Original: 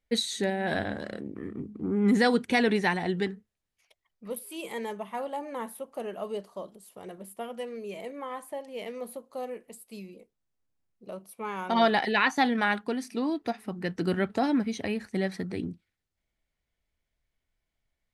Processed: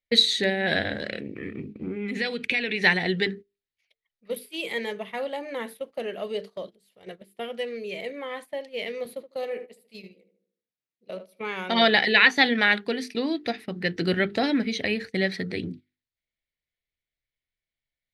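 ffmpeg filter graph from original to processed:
ffmpeg -i in.wav -filter_complex "[0:a]asettb=1/sr,asplit=3[link_01][link_02][link_03];[link_01]atrim=end=1.094[link_04];[link_02]atrim=start=1.09:end=2.82,asetpts=PTS-STARTPTS,afade=type=in:duration=0.004:curve=qsin,afade=type=out:start_time=1.726:duration=0.004:curve=qsin,equalizer=frequency=2500:width_type=o:width=0.36:gain=13,acompressor=threshold=-29dB:ratio=12:attack=3.2:release=140:knee=1:detection=peak[link_05];[link_03]atrim=start=2.816[link_06];[link_04][link_05]acrossfade=duration=0.004:curve1=hsin:curve2=qsin[link_07];[link_07][link_06]acrossfade=duration=0.004:curve1=qsin:curve2=hsin,asettb=1/sr,asplit=3[link_08][link_09][link_10];[link_08]atrim=end=9.054[link_11];[link_09]atrim=start=9.05:end=11.4,asetpts=PTS-STARTPTS,afade=type=in:duration=0.004:curve=qsin,afade=type=out:start_time=2.346:duration=0.004:curve=qsin,highpass=140,asplit=2[link_12][link_13];[link_13]adelay=76,lowpass=frequency=1600:poles=1,volume=-8dB,asplit=2[link_14][link_15];[link_15]adelay=76,lowpass=frequency=1600:poles=1,volume=0.52,asplit=2[link_16][link_17];[link_17]adelay=76,lowpass=frequency=1600:poles=1,volume=0.52,asplit=2[link_18][link_19];[link_19]adelay=76,lowpass=frequency=1600:poles=1,volume=0.52,asplit=2[link_20][link_21];[link_21]adelay=76,lowpass=frequency=1600:poles=1,volume=0.52,asplit=2[link_22][link_23];[link_23]adelay=76,lowpass=frequency=1600:poles=1,volume=0.52[link_24];[link_12][link_14][link_16][link_18][link_20][link_22][link_24]amix=inputs=7:normalize=0,atrim=end_sample=103635[link_25];[link_10]atrim=start=11.396[link_26];[link_11][link_25]acrossfade=duration=0.004:curve1=hsin:curve2=qsin[link_27];[link_27][link_26]acrossfade=duration=0.004:curve1=qsin:curve2=hsin,bandreject=frequency=50:width_type=h:width=6,bandreject=frequency=100:width_type=h:width=6,bandreject=frequency=150:width_type=h:width=6,bandreject=frequency=200:width_type=h:width=6,bandreject=frequency=250:width_type=h:width=6,bandreject=frequency=300:width_type=h:width=6,bandreject=frequency=350:width_type=h:width=6,bandreject=frequency=400:width_type=h:width=6,bandreject=frequency=450:width_type=h:width=6,agate=range=-14dB:threshold=-42dB:ratio=16:detection=peak,equalizer=frequency=125:width_type=o:width=1:gain=5,equalizer=frequency=500:width_type=o:width=1:gain=6,equalizer=frequency=1000:width_type=o:width=1:gain=-7,equalizer=frequency=2000:width_type=o:width=1:gain=10,equalizer=frequency=4000:width_type=o:width=1:gain=11,equalizer=frequency=8000:width_type=o:width=1:gain=-4" out.wav

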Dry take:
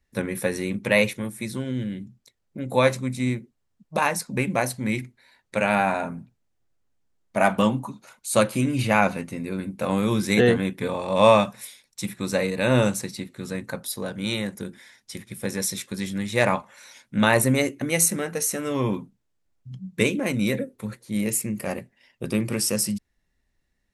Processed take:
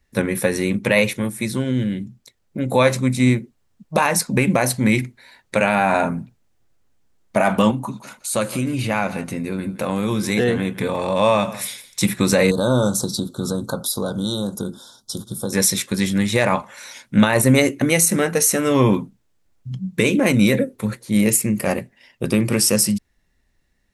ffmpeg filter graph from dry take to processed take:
ffmpeg -i in.wav -filter_complex "[0:a]asettb=1/sr,asplit=3[link_01][link_02][link_03];[link_01]atrim=end=7.714[link_04];[link_02]atrim=start=7.71:end=12.01,asetpts=PTS-STARTPTS,afade=type=in:duration=0.004:curve=qsin,afade=type=out:start_time=4.296:duration=0.004:curve=qsin,acompressor=threshold=-36dB:ratio=2:attack=3.2:release=140:knee=1:detection=peak,aecho=1:1:167:0.141,atrim=end_sample=189630[link_05];[link_03]atrim=start=12.006[link_06];[link_04][link_05]acrossfade=duration=0.004:curve1=hsin:curve2=qsin[link_07];[link_07][link_06]acrossfade=duration=0.004:curve1=qsin:curve2=hsin,asettb=1/sr,asplit=3[link_08][link_09][link_10];[link_08]atrim=end=12.514[link_11];[link_09]atrim=start=12.51:end=15.53,asetpts=PTS-STARTPTS,afade=type=in:duration=0.004:curve=qsin,afade=type=out:start_time=3.016:duration=0.004:curve=qsin,acompressor=threshold=-32dB:ratio=2.5:attack=3.2:release=140:knee=1:detection=peak,asuperstop=centerf=2200:order=12:qfactor=1.2[link_12];[link_10]atrim=start=15.526[link_13];[link_11][link_12]acrossfade=duration=0.004:curve1=hsin:curve2=qsin[link_14];[link_14][link_13]acrossfade=duration=0.004:curve1=qsin:curve2=hsin,dynaudnorm=framelen=600:gausssize=11:maxgain=11.5dB,alimiter=limit=-11.5dB:level=0:latency=1:release=91,volume=7dB" out.wav

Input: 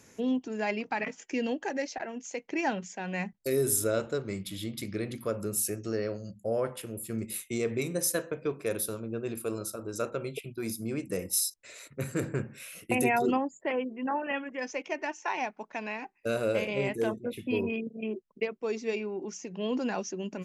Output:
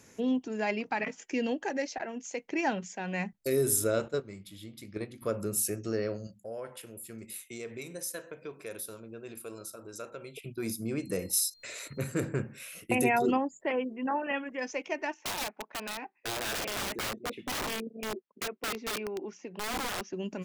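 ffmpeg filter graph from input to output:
ffmpeg -i in.wav -filter_complex "[0:a]asettb=1/sr,asplit=3[link_01][link_02][link_03];[link_01]atrim=end=4.084[link_04];[link_02]atrim=start=4.08:end=5.22,asetpts=PTS-STARTPTS,afade=type=in:duration=0.004:curve=qsin,afade=type=out:start_time=1.136:duration=0.004:curve=qsin,agate=range=-10dB:threshold=-32dB:ratio=16:release=100:detection=peak,asplit=2[link_05][link_06];[link_06]adelay=19,volume=-13.5dB[link_07];[link_05][link_07]amix=inputs=2:normalize=0,atrim=end_sample=50274[link_08];[link_03]atrim=start=5.216[link_09];[link_04][link_08]acrossfade=duration=0.004:curve1=hsin:curve2=qsin[link_10];[link_10][link_09]acrossfade=duration=0.004:curve1=qsin:curve2=hsin,asettb=1/sr,asplit=3[link_11][link_12][link_13];[link_11]atrim=end=6.274[link_14];[link_12]atrim=start=6.27:end=10.43,asetpts=PTS-STARTPTS,afade=type=in:duration=0.004:curve=qsin,afade=type=out:start_time=4.156:duration=0.004:curve=qsin,lowshelf=frequency=450:gain=-8.5,bandreject=frequency=1200:width=14,acompressor=threshold=-47dB:ratio=1.5:attack=3.2:release=140:knee=1:detection=peak[link_15];[link_13]atrim=start=10.426[link_16];[link_14][link_15]acrossfade=duration=0.004:curve1=hsin:curve2=qsin[link_17];[link_17][link_16]acrossfade=duration=0.004:curve1=qsin:curve2=hsin,asettb=1/sr,asplit=3[link_18][link_19][link_20];[link_18]atrim=end=10.984[link_21];[link_19]atrim=start=10.98:end=12.07,asetpts=PTS-STARTPTS,afade=type=in:duration=0.004:curve=qsin,afade=type=out:start_time=1.086:duration=0.004:curve=qsin,acompressor=mode=upward:threshold=-33dB:ratio=2.5:attack=3.2:release=140:knee=2.83:detection=peak,aeval=exprs='val(0)+0.00112*sin(2*PI*4200*n/s)':channel_layout=same[link_22];[link_20]atrim=start=12.066[link_23];[link_21][link_22]acrossfade=duration=0.004:curve1=hsin:curve2=qsin[link_24];[link_24][link_23]acrossfade=duration=0.004:curve1=qsin:curve2=hsin,asettb=1/sr,asplit=3[link_25][link_26][link_27];[link_25]atrim=end=15.144[link_28];[link_26]atrim=start=15.14:end=20.13,asetpts=PTS-STARTPTS,afade=type=in:duration=0.004:curve=qsin,afade=type=out:start_time=4.986:duration=0.004:curve=qsin,highpass=240,lowpass=3100,aeval=exprs='(mod(28.2*val(0)+1,2)-1)/28.2':channel_layout=same[link_29];[link_27]atrim=start=20.126[link_30];[link_28][link_29]acrossfade=duration=0.004:curve1=hsin:curve2=qsin[link_31];[link_31][link_30]acrossfade=duration=0.004:curve1=qsin:curve2=hsin" out.wav

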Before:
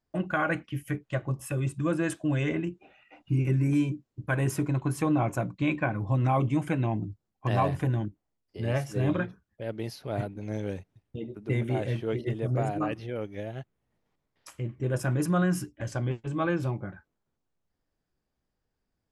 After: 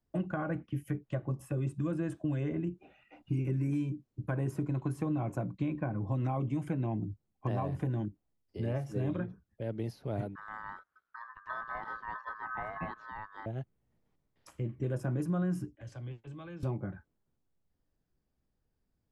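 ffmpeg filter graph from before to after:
ffmpeg -i in.wav -filter_complex "[0:a]asettb=1/sr,asplit=3[link_01][link_02][link_03];[link_01]atrim=end=10.354[link_04];[link_02]atrim=start=10.35:end=13.46,asetpts=PTS-STARTPTS,afade=type=in:duration=0.004:curve=qsin,afade=type=out:start_time=3.106:duration=0.004:curve=qsin,lowpass=5400,aeval=exprs='val(0)*sin(2*PI*1400*n/s)':channel_layout=same[link_05];[link_03]atrim=start=13.456[link_06];[link_04][link_05]acrossfade=duration=0.004:curve1=hsin:curve2=qsin[link_07];[link_07][link_06]acrossfade=duration=0.004:curve1=qsin:curve2=hsin,asettb=1/sr,asplit=3[link_08][link_09][link_10];[link_08]atrim=end=15.754[link_11];[link_09]atrim=start=15.75:end=16.63,asetpts=PTS-STARTPTS,afade=type=in:duration=0.004:curve=qsin,afade=type=out:start_time=0.876:duration=0.004:curve=qsin,acrossover=split=360 3800:gain=0.251 1 0.251[link_12][link_13][link_14];[link_12][link_13][link_14]amix=inputs=3:normalize=0,acrossover=split=160|3000[link_15][link_16][link_17];[link_16]acompressor=threshold=-58dB:ratio=2:attack=3.2:release=140:knee=2.83:detection=peak[link_18];[link_15][link_18][link_17]amix=inputs=3:normalize=0[link_19];[link_10]atrim=start=16.626[link_20];[link_11][link_19]acrossfade=duration=0.004:curve1=hsin:curve2=qsin[link_21];[link_21][link_20]acrossfade=duration=0.004:curve1=qsin:curve2=hsin,lowshelf=frequency=430:gain=8.5,acrossover=split=180|1400[link_22][link_23][link_24];[link_22]acompressor=threshold=-32dB:ratio=4[link_25];[link_23]acompressor=threshold=-28dB:ratio=4[link_26];[link_24]acompressor=threshold=-51dB:ratio=4[link_27];[link_25][link_26][link_27]amix=inputs=3:normalize=0,volume=-5.5dB" out.wav

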